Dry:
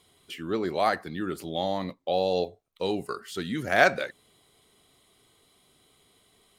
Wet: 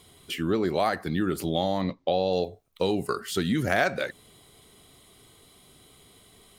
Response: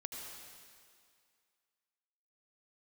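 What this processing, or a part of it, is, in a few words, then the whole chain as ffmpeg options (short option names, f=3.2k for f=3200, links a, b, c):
ASMR close-microphone chain: -filter_complex "[0:a]lowshelf=f=230:g=6.5,acompressor=threshold=-28dB:ratio=4,highshelf=f=9.6k:g=5,asettb=1/sr,asplit=3[a][b][c];[a]atrim=end=1.814[d];[b]atrim=start=1.81:end=2.33,asetpts=PTS-STARTPTS,afade=t=in:d=0.004:c=qsin,afade=t=out:st=0.516:d=0.004:c=qsin,lowpass=f=5.8k:w=0.5412,lowpass=f=5.8k:w=1.3066[e];[c]atrim=start=2.326[f];[d][e]acrossfade=d=0.004:c1=hsin:c2=qsin[g];[g][f]acrossfade=d=0.004:c1=qsin:c2=hsin,volume=6dB"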